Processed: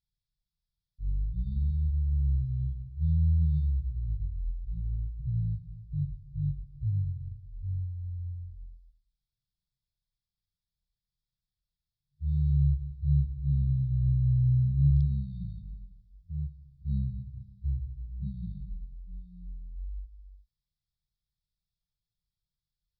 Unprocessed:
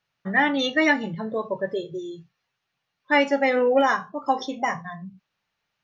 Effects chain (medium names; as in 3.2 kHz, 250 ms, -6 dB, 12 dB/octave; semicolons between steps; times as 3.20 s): wide varispeed 0.254×; static phaser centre 530 Hz, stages 4; FFT band-reject 210–3200 Hz